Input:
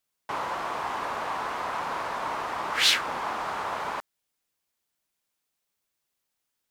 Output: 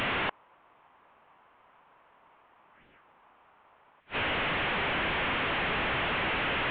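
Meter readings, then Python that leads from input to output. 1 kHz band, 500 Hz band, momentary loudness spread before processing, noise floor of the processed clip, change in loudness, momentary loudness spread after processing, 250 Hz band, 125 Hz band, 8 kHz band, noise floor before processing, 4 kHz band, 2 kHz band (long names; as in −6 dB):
−4.5 dB, +0.5 dB, 11 LU, −63 dBFS, −0.5 dB, 3 LU, +6.0 dB, +9.5 dB, below −30 dB, −81 dBFS, −5.0 dB, +3.0 dB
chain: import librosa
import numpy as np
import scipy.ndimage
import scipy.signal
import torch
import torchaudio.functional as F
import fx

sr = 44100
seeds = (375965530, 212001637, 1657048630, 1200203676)

y = fx.delta_mod(x, sr, bps=16000, step_db=-31.5)
y = fx.gate_flip(y, sr, shuts_db=-27.0, range_db=-39)
y = y * 10.0 ** (9.0 / 20.0)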